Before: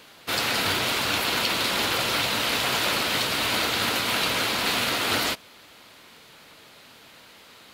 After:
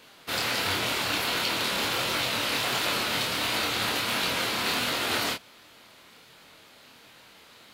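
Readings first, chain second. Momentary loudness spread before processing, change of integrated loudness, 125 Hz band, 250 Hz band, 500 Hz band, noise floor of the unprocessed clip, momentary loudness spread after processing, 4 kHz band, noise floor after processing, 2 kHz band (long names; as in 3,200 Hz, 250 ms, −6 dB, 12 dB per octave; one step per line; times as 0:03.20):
1 LU, −3.0 dB, −3.0 dB, −3.0 dB, −3.0 dB, −51 dBFS, 1 LU, −3.0 dB, −54 dBFS, −3.0 dB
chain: chorus effect 1.4 Hz, depth 5.5 ms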